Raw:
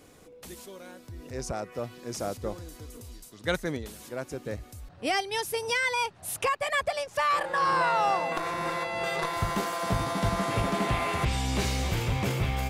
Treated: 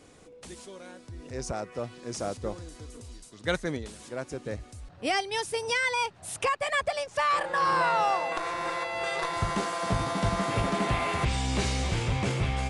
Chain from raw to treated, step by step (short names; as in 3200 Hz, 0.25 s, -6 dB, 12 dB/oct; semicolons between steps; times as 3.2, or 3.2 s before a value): 8.04–9.29 bell 180 Hz -9.5 dB 1.3 oct; Vorbis 64 kbps 22050 Hz